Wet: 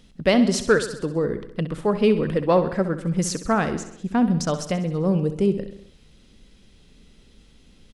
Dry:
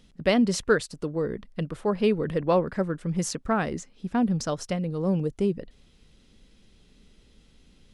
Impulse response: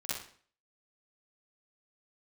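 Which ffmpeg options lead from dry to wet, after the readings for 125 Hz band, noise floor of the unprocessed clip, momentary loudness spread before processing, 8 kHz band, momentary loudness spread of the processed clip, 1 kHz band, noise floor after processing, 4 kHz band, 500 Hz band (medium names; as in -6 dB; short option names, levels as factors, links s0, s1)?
+4.5 dB, -59 dBFS, 9 LU, +4.5 dB, 8 LU, +4.0 dB, -54 dBFS, +4.5 dB, +4.5 dB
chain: -af "acontrast=39,aecho=1:1:65|130|195|260|325|390:0.251|0.146|0.0845|0.049|0.0284|0.0165,volume=0.841"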